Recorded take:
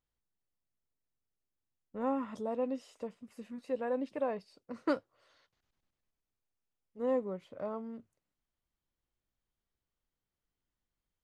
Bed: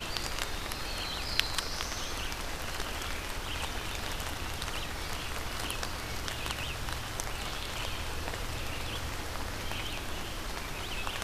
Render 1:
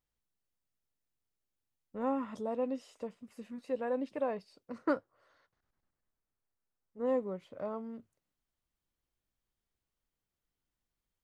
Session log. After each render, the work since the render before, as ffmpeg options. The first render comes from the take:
ffmpeg -i in.wav -filter_complex "[0:a]asettb=1/sr,asplit=3[link_01][link_02][link_03];[link_01]atrim=end=4.784[link_04];[link_02]atrim=start=4.78:end=7.06,asetpts=PTS-STARTPTS,afade=type=in:duration=0.004:curve=qsin,afade=type=out:start_time=2.276:duration=0.004:curve=qsin,highshelf=frequency=2100:width_type=q:width=1.5:gain=-6.5[link_05];[link_03]atrim=start=7.056[link_06];[link_04][link_05]acrossfade=duration=0.004:curve1=hsin:curve2=qsin[link_07];[link_07][link_06]acrossfade=duration=0.004:curve1=qsin:curve2=hsin" out.wav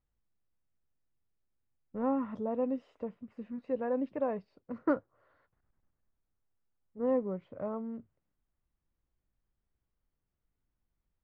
ffmpeg -i in.wav -af "lowpass=2000,lowshelf=frequency=220:gain=8.5" out.wav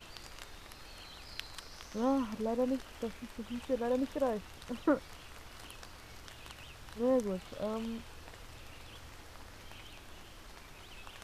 ffmpeg -i in.wav -i bed.wav -filter_complex "[1:a]volume=-14.5dB[link_01];[0:a][link_01]amix=inputs=2:normalize=0" out.wav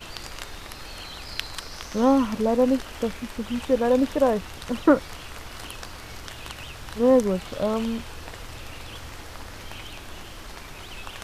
ffmpeg -i in.wav -af "volume=12dB" out.wav

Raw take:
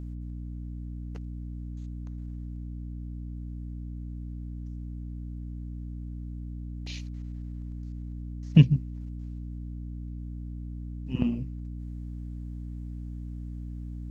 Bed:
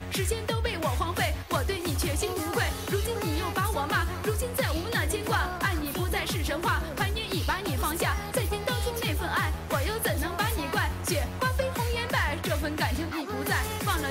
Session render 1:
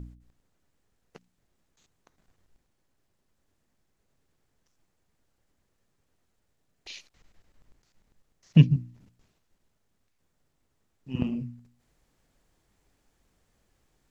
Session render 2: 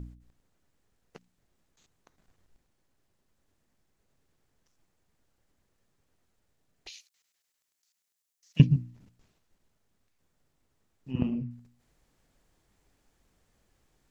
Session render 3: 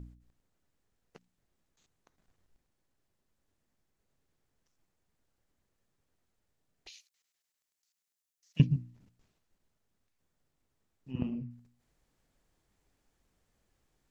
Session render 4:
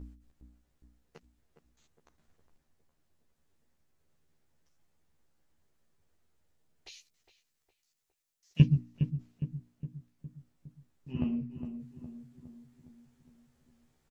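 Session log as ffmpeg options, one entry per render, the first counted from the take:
ffmpeg -i in.wav -af "bandreject=frequency=60:width_type=h:width=4,bandreject=frequency=120:width_type=h:width=4,bandreject=frequency=180:width_type=h:width=4,bandreject=frequency=240:width_type=h:width=4,bandreject=frequency=300:width_type=h:width=4" out.wav
ffmpeg -i in.wav -filter_complex "[0:a]asettb=1/sr,asplit=3[link_01][link_02][link_03];[link_01]atrim=end=6.894[link_04];[link_02]atrim=start=6.89:end=8.6,asetpts=PTS-STARTPTS,afade=type=in:duration=0.004:curve=qsin,afade=type=out:start_time=1.706:duration=0.004:curve=qsin,aderivative[link_05];[link_03]atrim=start=8.596[link_06];[link_04][link_05]acrossfade=duration=0.004:curve1=hsin:curve2=qsin[link_07];[link_07][link_06]acrossfade=duration=0.004:curve1=qsin:curve2=hsin,asettb=1/sr,asplit=3[link_08][link_09][link_10];[link_08]atrim=end=11.114[link_11];[link_09]atrim=start=11.11:end=11.51,asetpts=PTS-STARTPTS,afade=type=in:duration=0.004:curve=qsin,afade=type=out:start_time=0.396:duration=0.004:curve=qsin,lowpass=frequency=2200:poles=1[link_12];[link_10]atrim=start=11.506[link_13];[link_11][link_12]acrossfade=duration=0.004:curve1=hsin:curve2=qsin[link_14];[link_14][link_13]acrossfade=duration=0.004:curve1=qsin:curve2=hsin" out.wav
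ffmpeg -i in.wav -af "volume=-5.5dB" out.wav
ffmpeg -i in.wav -filter_complex "[0:a]asplit=2[link_01][link_02];[link_02]adelay=13,volume=-2.5dB[link_03];[link_01][link_03]amix=inputs=2:normalize=0,asplit=2[link_04][link_05];[link_05]adelay=411,lowpass=frequency=1400:poles=1,volume=-9dB,asplit=2[link_06][link_07];[link_07]adelay=411,lowpass=frequency=1400:poles=1,volume=0.54,asplit=2[link_08][link_09];[link_09]adelay=411,lowpass=frequency=1400:poles=1,volume=0.54,asplit=2[link_10][link_11];[link_11]adelay=411,lowpass=frequency=1400:poles=1,volume=0.54,asplit=2[link_12][link_13];[link_13]adelay=411,lowpass=frequency=1400:poles=1,volume=0.54,asplit=2[link_14][link_15];[link_15]adelay=411,lowpass=frequency=1400:poles=1,volume=0.54[link_16];[link_04][link_06][link_08][link_10][link_12][link_14][link_16]amix=inputs=7:normalize=0" out.wav

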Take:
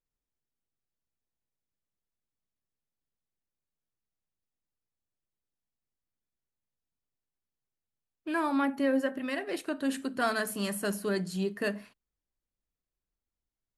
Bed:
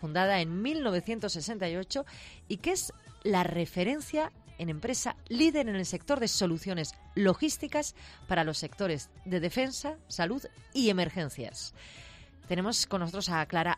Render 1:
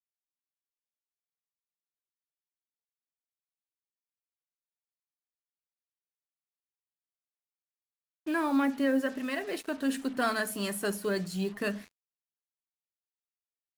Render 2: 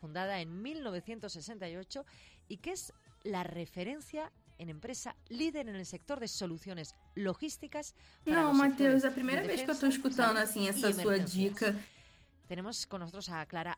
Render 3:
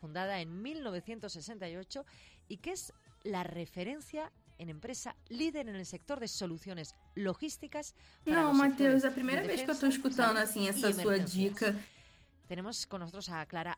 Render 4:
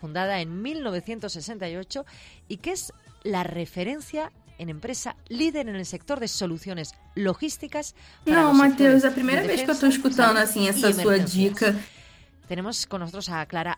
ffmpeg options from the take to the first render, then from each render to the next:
ffmpeg -i in.wav -af "acrusher=bits=7:mix=0:aa=0.5,aphaser=in_gain=1:out_gain=1:delay=4.6:decay=0.28:speed=0.16:type=sinusoidal" out.wav
ffmpeg -i in.wav -i bed.wav -filter_complex "[1:a]volume=-10.5dB[link_01];[0:a][link_01]amix=inputs=2:normalize=0" out.wav
ffmpeg -i in.wav -af anull out.wav
ffmpeg -i in.wav -af "volume=11dB" out.wav

